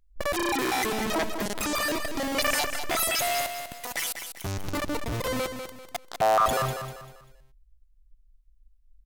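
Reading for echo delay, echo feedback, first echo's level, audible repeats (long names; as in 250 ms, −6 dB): 196 ms, 35%, −8.0 dB, 3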